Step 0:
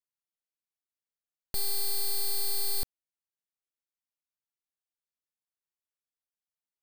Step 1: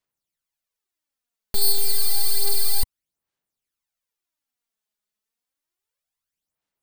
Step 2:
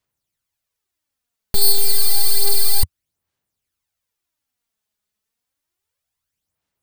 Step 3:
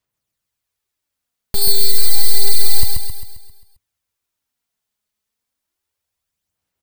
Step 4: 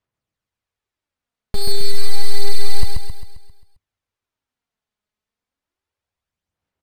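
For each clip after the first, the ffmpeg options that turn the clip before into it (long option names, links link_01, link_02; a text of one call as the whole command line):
ffmpeg -i in.wav -af "aphaser=in_gain=1:out_gain=1:delay=4.8:decay=0.6:speed=0.3:type=sinusoidal,volume=5.5dB" out.wav
ffmpeg -i in.wav -af "equalizer=frequency=87:width=1.1:gain=10,volume=5dB" out.wav
ffmpeg -i in.wav -af "aecho=1:1:133|266|399|532|665|798|931:0.668|0.334|0.167|0.0835|0.0418|0.0209|0.0104,volume=-1dB" out.wav
ffmpeg -i in.wav -af "aemphasis=mode=reproduction:type=75fm" out.wav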